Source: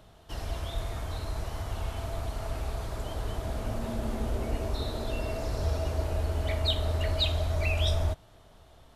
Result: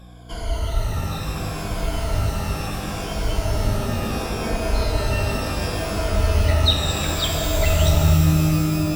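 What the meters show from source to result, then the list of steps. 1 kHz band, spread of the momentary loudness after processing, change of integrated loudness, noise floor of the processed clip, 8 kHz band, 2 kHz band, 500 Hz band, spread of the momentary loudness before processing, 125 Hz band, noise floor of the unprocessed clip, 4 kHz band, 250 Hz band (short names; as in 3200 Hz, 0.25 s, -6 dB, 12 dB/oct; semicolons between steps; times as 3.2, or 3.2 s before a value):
+11.0 dB, 10 LU, +10.0 dB, -29 dBFS, +16.5 dB, +11.0 dB, +8.5 dB, 9 LU, +10.5 dB, -55 dBFS, +9.0 dB, +14.5 dB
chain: moving spectral ripple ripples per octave 1.8, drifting -0.71 Hz, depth 18 dB; hum 60 Hz, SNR 21 dB; shimmer reverb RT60 3.9 s, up +12 st, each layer -2 dB, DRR 4.5 dB; gain +3.5 dB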